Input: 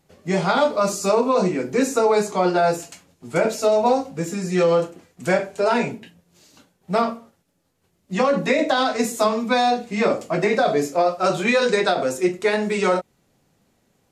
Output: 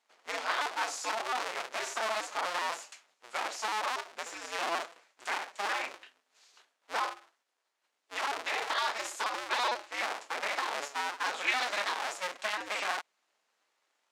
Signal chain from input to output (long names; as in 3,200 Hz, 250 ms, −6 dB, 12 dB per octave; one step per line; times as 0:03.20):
sub-harmonics by changed cycles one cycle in 2, inverted
high-pass filter 1,000 Hz 12 dB per octave
brickwall limiter −10.5 dBFS, peak gain reduction 9.5 dB
high-frequency loss of the air 57 metres
level −5.5 dB